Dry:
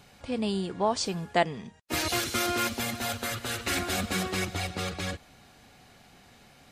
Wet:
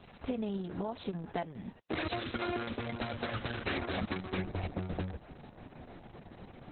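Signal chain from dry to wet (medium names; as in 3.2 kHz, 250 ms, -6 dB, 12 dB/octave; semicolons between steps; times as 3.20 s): tilt shelf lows +4 dB, about 1.5 kHz, from 4.37 s lows +9.5 dB; compression 8:1, threshold -31 dBFS, peak gain reduction 14.5 dB; Opus 6 kbps 48 kHz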